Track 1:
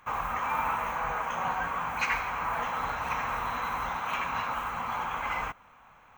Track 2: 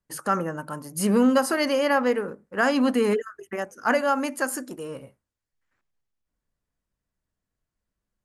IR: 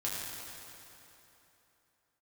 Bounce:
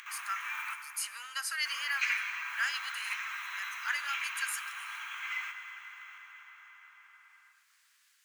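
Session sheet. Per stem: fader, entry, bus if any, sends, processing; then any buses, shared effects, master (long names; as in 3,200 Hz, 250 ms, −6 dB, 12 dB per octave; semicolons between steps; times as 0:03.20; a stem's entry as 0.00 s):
−3.5 dB, 0.00 s, muted 0:00.74–0:01.65, send −4.5 dB, no processing
−3.0 dB, 0.00 s, send −20 dB, no processing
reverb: on, RT60 3.2 s, pre-delay 5 ms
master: upward compression, threshold −33 dBFS; inverse Chebyshev high-pass filter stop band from 380 Hz, stop band 70 dB; high-shelf EQ 10,000 Hz −6 dB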